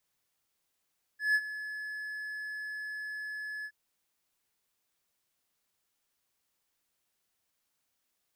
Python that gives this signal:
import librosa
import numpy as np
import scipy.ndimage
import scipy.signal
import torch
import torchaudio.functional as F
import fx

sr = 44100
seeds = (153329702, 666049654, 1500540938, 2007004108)

y = fx.adsr_tone(sr, wave='triangle', hz=1710.0, attack_ms=158.0, decay_ms=52.0, sustain_db=-14.5, held_s=2.46, release_ms=60.0, level_db=-20.0)